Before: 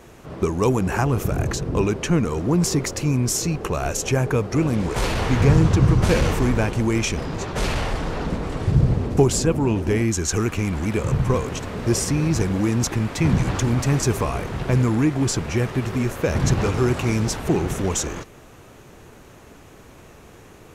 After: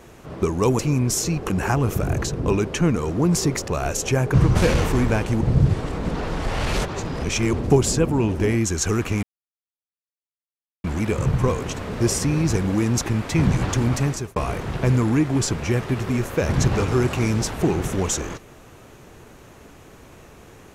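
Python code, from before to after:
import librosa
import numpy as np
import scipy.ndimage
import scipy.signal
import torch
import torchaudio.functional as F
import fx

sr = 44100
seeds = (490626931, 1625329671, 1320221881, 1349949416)

y = fx.edit(x, sr, fx.move(start_s=2.97, length_s=0.71, to_s=0.79),
    fx.cut(start_s=4.34, length_s=1.47),
    fx.reverse_span(start_s=6.88, length_s=2.12),
    fx.insert_silence(at_s=10.7, length_s=1.61),
    fx.fade_out_span(start_s=13.82, length_s=0.4), tone=tone)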